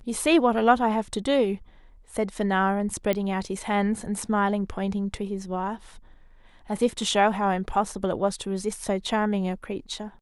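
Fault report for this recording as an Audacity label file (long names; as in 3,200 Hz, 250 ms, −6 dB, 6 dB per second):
3.130000	3.130000	click −13 dBFS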